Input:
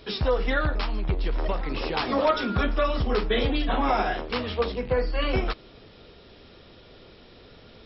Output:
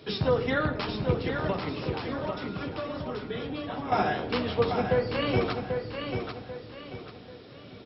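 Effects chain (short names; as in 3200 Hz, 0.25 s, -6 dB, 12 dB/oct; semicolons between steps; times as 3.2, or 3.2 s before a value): octaver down 2 oct, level -2 dB; HPF 94 Hz 24 dB/oct; low shelf 460 Hz +4.5 dB; 1.69–3.92 compressor, threshold -31 dBFS, peak gain reduction 14.5 dB; feedback echo 0.79 s, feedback 36%, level -6 dB; reverb RT60 1.4 s, pre-delay 7 ms, DRR 11 dB; gain -2.5 dB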